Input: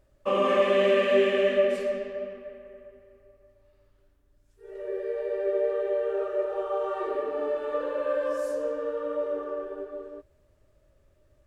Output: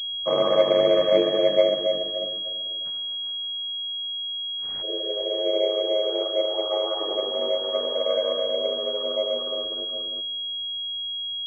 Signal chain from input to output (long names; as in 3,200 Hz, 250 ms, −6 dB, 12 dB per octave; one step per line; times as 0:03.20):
0:02.84–0:04.81: compressing power law on the bin magnitudes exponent 0.12
dynamic equaliser 650 Hz, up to +8 dB, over −38 dBFS, Q 1.7
ring modulation 49 Hz
feedback echo with a low-pass in the loop 138 ms, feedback 74%, low-pass 870 Hz, level −21 dB
switching amplifier with a slow clock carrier 3,300 Hz